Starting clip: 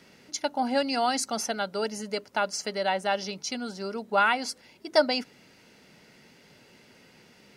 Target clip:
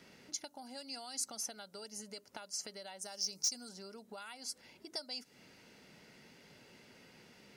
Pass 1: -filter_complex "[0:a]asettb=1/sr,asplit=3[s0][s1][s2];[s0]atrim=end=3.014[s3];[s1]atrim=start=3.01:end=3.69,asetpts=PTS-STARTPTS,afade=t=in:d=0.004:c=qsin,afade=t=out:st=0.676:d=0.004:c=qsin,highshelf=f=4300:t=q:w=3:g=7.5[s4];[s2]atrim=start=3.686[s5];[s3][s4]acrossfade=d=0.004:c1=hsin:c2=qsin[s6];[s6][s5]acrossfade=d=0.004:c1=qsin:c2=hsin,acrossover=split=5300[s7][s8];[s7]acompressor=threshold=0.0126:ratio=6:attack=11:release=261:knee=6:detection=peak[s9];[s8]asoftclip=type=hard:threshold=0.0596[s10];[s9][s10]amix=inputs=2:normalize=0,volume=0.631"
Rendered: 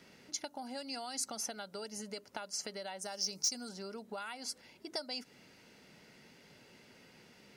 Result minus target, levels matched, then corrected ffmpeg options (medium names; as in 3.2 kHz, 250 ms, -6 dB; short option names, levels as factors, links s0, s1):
compression: peak gain reduction -6.5 dB
-filter_complex "[0:a]asettb=1/sr,asplit=3[s0][s1][s2];[s0]atrim=end=3.014[s3];[s1]atrim=start=3.01:end=3.69,asetpts=PTS-STARTPTS,afade=t=in:d=0.004:c=qsin,afade=t=out:st=0.676:d=0.004:c=qsin,highshelf=f=4300:t=q:w=3:g=7.5[s4];[s2]atrim=start=3.686[s5];[s3][s4]acrossfade=d=0.004:c1=hsin:c2=qsin[s6];[s6][s5]acrossfade=d=0.004:c1=qsin:c2=hsin,acrossover=split=5300[s7][s8];[s7]acompressor=threshold=0.00531:ratio=6:attack=11:release=261:knee=6:detection=peak[s9];[s8]asoftclip=type=hard:threshold=0.0596[s10];[s9][s10]amix=inputs=2:normalize=0,volume=0.631"